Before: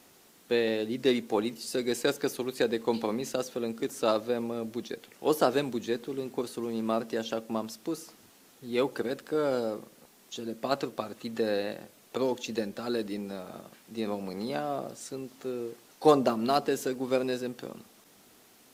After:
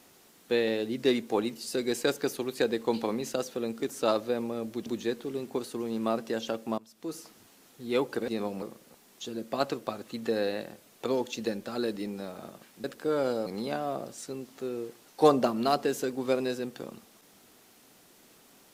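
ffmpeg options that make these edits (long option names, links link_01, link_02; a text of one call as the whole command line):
ffmpeg -i in.wav -filter_complex "[0:a]asplit=7[link_01][link_02][link_03][link_04][link_05][link_06][link_07];[link_01]atrim=end=4.862[link_08];[link_02]atrim=start=5.688:end=7.61,asetpts=PTS-STARTPTS,afade=type=out:start_time=1.918:duration=0.004:curve=hsin:silence=0.133352[link_09];[link_03]atrim=start=7.61:end=9.112,asetpts=PTS-STARTPTS,afade=type=in:duration=0.38:curve=qua:silence=0.133352[link_10];[link_04]atrim=start=13.948:end=14.292[link_11];[link_05]atrim=start=9.728:end=13.952[link_12];[link_06]atrim=start=9.108:end=9.732[link_13];[link_07]atrim=start=14.288[link_14];[link_09][link_10]concat=n=2:v=0:a=1[link_15];[link_08][link_15]acrossfade=duration=0.004:curve1=hsin:curve2=hsin[link_16];[link_16][link_11]acrossfade=duration=0.004:curve1=hsin:curve2=hsin[link_17];[link_17][link_12]acrossfade=duration=0.004:curve1=hsin:curve2=hsin[link_18];[link_18][link_13]acrossfade=duration=0.004:curve1=hsin:curve2=hsin[link_19];[link_19][link_14]acrossfade=duration=0.004:curve1=hsin:curve2=hsin" out.wav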